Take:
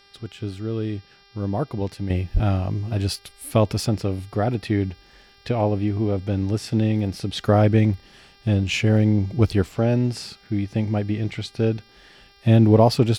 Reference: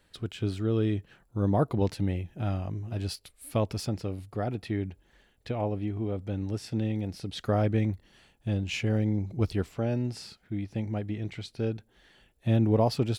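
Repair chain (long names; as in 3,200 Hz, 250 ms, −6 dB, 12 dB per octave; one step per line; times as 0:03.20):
hum removal 398.4 Hz, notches 14
0:02.33–0:02.45: high-pass filter 140 Hz 24 dB per octave
level 0 dB, from 0:02.10 −9 dB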